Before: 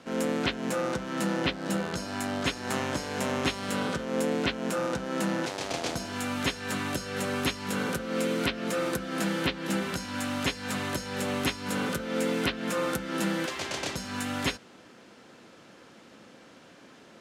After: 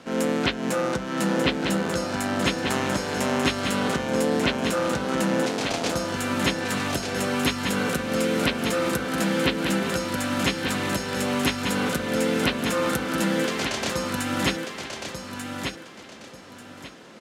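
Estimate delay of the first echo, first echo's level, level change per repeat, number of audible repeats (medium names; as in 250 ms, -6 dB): 1190 ms, -6.0 dB, -11.5 dB, 3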